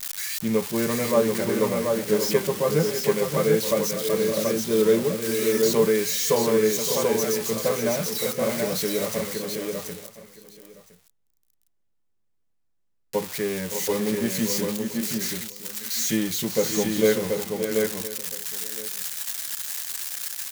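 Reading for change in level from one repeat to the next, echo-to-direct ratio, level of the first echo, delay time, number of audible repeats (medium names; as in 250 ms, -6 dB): no regular repeats, -2.0 dB, -13.0 dB, 565 ms, 7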